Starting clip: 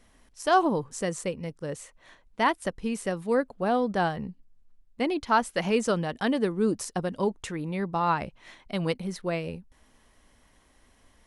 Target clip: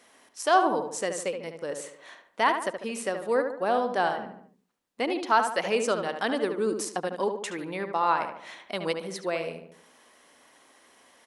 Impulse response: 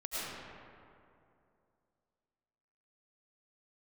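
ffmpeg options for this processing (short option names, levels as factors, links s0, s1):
-filter_complex "[0:a]highpass=380,asplit=2[s0][s1];[s1]adelay=73,lowpass=f=2300:p=1,volume=0.473,asplit=2[s2][s3];[s3]adelay=73,lowpass=f=2300:p=1,volume=0.45,asplit=2[s4][s5];[s5]adelay=73,lowpass=f=2300:p=1,volume=0.45,asplit=2[s6][s7];[s7]adelay=73,lowpass=f=2300:p=1,volume=0.45,asplit=2[s8][s9];[s9]adelay=73,lowpass=f=2300:p=1,volume=0.45[s10];[s0][s2][s4][s6][s8][s10]amix=inputs=6:normalize=0,asplit=2[s11][s12];[s12]acompressor=threshold=0.00708:ratio=6,volume=1.06[s13];[s11][s13]amix=inputs=2:normalize=0"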